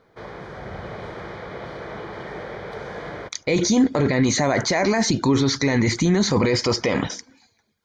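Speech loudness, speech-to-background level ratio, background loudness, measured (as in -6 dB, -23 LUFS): -20.0 LUFS, 15.0 dB, -35.0 LUFS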